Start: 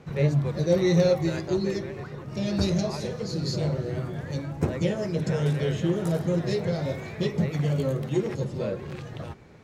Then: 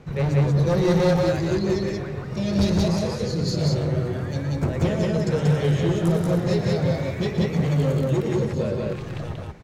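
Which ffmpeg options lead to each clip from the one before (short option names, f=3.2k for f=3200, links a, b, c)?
-filter_complex "[0:a]lowshelf=f=69:g=10.5,asoftclip=type=hard:threshold=-19.5dB,asplit=2[a][b];[b]aecho=0:1:119.5|183.7:0.316|0.891[c];[a][c]amix=inputs=2:normalize=0,volume=1.5dB"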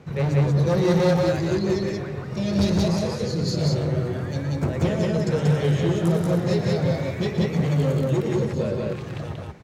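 -af "highpass=69"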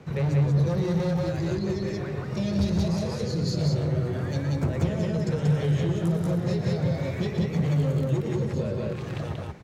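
-filter_complex "[0:a]acrossover=split=160[a][b];[b]acompressor=threshold=-28dB:ratio=5[c];[a][c]amix=inputs=2:normalize=0"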